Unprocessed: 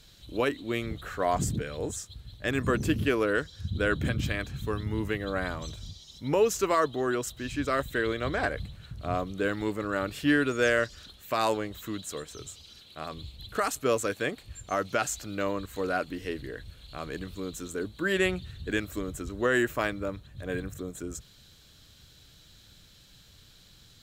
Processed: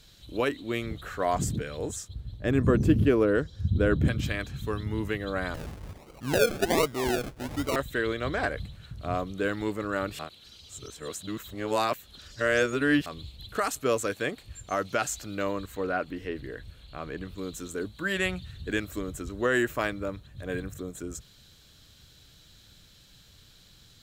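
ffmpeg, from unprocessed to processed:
-filter_complex "[0:a]asettb=1/sr,asplit=3[a][b][c];[a]atrim=end=2.084[d];[b]atrim=start=2.08:end=4.08,asetpts=PTS-STARTPTS,afade=t=in:d=0.004:c=qsin,afade=t=out:st=1.996:d=0.004:c=qsin,tiltshelf=f=850:g=7[e];[c]atrim=start=4.076[f];[d][e]acrossfade=d=0.004:c1=hsin:c2=qsin[g];[g][f]acrossfade=d=0.004:c1=qsin:c2=hsin,asettb=1/sr,asplit=3[h][i][j];[h]atrim=end=5.544[k];[i]atrim=start=5.54:end=7.76,asetpts=PTS-STARTPTS,afade=t=in:d=0.004:c=qsin,afade=t=out:st=2.216:d=0.004:c=qsin,acrusher=samples=36:mix=1:aa=0.000001:lfo=1:lforange=21.6:lforate=1.3[l];[j]atrim=start=7.756[m];[k][l]acrossfade=d=0.004:c1=hsin:c2=qsin[n];[n][m]acrossfade=d=0.004:c1=qsin:c2=hsin,asettb=1/sr,asplit=3[o][p][q];[o]atrim=end=15.754[r];[p]atrim=start=15.75:end=17.38,asetpts=PTS-STARTPTS,afade=t=in:d=0.004:c=qsin,afade=t=out:st=1.626:d=0.004:c=qsin,acrossover=split=3200[s][t];[t]acompressor=threshold=-60dB:ratio=4:attack=1:release=60[u];[s][u]amix=inputs=2:normalize=0[v];[q]atrim=start=17.376[w];[r][v]acrossfade=d=0.004:c1=hsin:c2=qsin[x];[x][w]acrossfade=d=0.004:c1=qsin:c2=hsin,asettb=1/sr,asplit=3[y][z][aa];[y]atrim=end=17.884[ab];[z]atrim=start=17.88:end=18.54,asetpts=PTS-STARTPTS,afade=t=in:d=0.004:c=qsin,afade=t=out:st=0.656:d=0.004:c=qsin,equalizer=f=370:t=o:w=0.77:g=-6.5[ac];[aa]atrim=start=18.536[ad];[ab][ac]acrossfade=d=0.004:c1=hsin:c2=qsin[ae];[ae][ad]acrossfade=d=0.004:c1=qsin:c2=hsin,asplit=3[af][ag][ah];[af]atrim=end=10.192[ai];[ag]atrim=start=10.188:end=13.062,asetpts=PTS-STARTPTS,areverse[aj];[ah]atrim=start=13.058[ak];[ai][aj]acrossfade=d=0.004:c1=hsin:c2=hsin[al];[al][ak]acrossfade=d=0.004:c1=hsin:c2=hsin"

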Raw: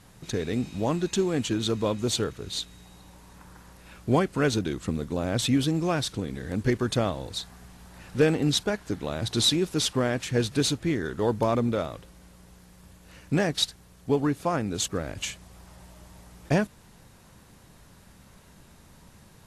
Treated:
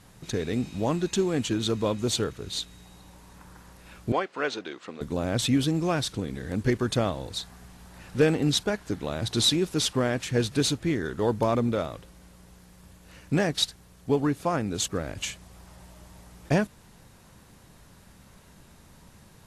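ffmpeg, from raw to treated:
-filter_complex "[0:a]asettb=1/sr,asplit=3[a][b][c];[a]atrim=end=4.124[d];[b]atrim=start=4.12:end=5.01,asetpts=PTS-STARTPTS,afade=t=in:d=0.004:c=qsin,afade=t=out:st=0.886:d=0.004:c=qsin,highpass=520,lowpass=4k[e];[c]atrim=start=5.006[f];[d][e]acrossfade=d=0.004:c1=hsin:c2=qsin[g];[g][f]acrossfade=d=0.004:c1=qsin:c2=hsin"

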